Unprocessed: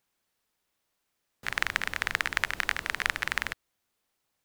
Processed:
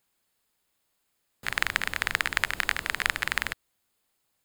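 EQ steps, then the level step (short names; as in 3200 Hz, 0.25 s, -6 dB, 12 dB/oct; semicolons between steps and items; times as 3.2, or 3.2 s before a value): tone controls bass +1 dB, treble +4 dB; notch 5800 Hz, Q 5.5; +1.5 dB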